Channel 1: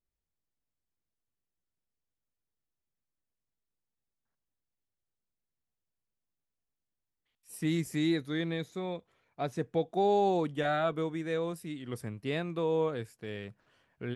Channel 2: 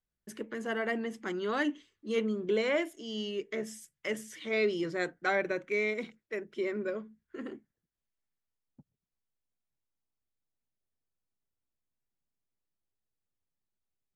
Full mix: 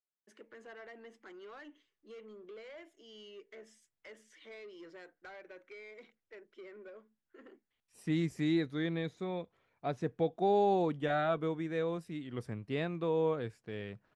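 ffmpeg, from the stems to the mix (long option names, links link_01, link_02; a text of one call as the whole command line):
ffmpeg -i stem1.wav -i stem2.wav -filter_complex "[0:a]adelay=450,volume=-1.5dB[link_01];[1:a]highpass=400,acompressor=threshold=-34dB:ratio=4,asoftclip=type=tanh:threshold=-34.5dB,volume=-9.5dB[link_02];[link_01][link_02]amix=inputs=2:normalize=0,lowpass=8500,highshelf=frequency=5000:gain=-9" out.wav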